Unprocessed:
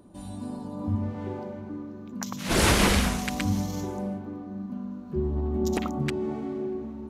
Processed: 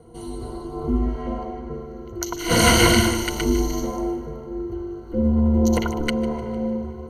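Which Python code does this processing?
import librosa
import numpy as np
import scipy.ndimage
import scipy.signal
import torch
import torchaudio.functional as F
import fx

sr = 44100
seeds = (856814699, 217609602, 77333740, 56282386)

y = fx.high_shelf(x, sr, hz=7800.0, db=-7.0, at=(1.21, 1.74))
y = fx.echo_wet_highpass(y, sr, ms=151, feedback_pct=43, hz=1600.0, wet_db=-13.5)
y = y * np.sin(2.0 * np.pi * 150.0 * np.arange(len(y)) / sr)
y = fx.ripple_eq(y, sr, per_octave=1.9, db=17)
y = y * 10.0 ** (5.5 / 20.0)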